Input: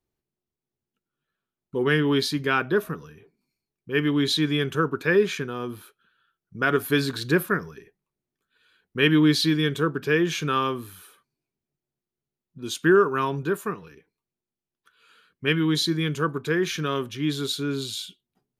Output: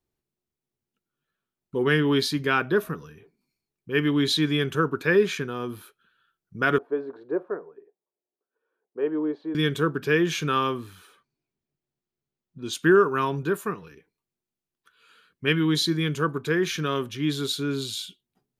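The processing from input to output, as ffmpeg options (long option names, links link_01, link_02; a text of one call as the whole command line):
ffmpeg -i in.wav -filter_complex "[0:a]asettb=1/sr,asplit=3[link_01][link_02][link_03];[link_01]atrim=end=6.784[link_04];[link_02]atrim=start=6.78:end=9.55,asetpts=PTS-STARTPTS,afade=type=in:duration=0.004:curve=qsin,afade=type=out:start_time=2.766:duration=0.004:curve=qsin,asuperpass=centerf=570:order=4:qfactor=1.2[link_05];[link_03]atrim=start=9.546[link_06];[link_04][link_05]acrossfade=duration=0.004:curve1=hsin:curve2=qsin[link_07];[link_07][link_06]acrossfade=duration=0.004:curve1=qsin:curve2=hsin,asettb=1/sr,asplit=3[link_08][link_09][link_10];[link_08]atrim=end=10.774[link_11];[link_09]atrim=start=10.77:end=12.73,asetpts=PTS-STARTPTS,afade=type=in:duration=0.004:curve=qsin,afade=type=out:start_time=1.956:duration=0.004:curve=qsin,equalizer=frequency=12000:width=1:gain=-13.5[link_12];[link_10]atrim=start=12.726[link_13];[link_11][link_12]acrossfade=duration=0.004:curve1=hsin:curve2=qsin[link_14];[link_14][link_13]acrossfade=duration=0.004:curve1=qsin:curve2=hsin" out.wav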